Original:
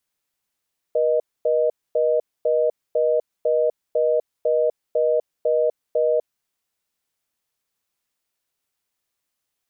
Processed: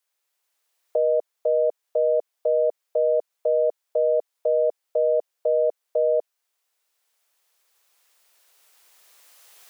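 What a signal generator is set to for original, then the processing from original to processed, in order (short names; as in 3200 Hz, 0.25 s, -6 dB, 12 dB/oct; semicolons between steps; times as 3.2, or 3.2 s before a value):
call progress tone reorder tone, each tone -19 dBFS 5.45 s
recorder AGC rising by 8.3 dB/s; HPF 440 Hz 24 dB/oct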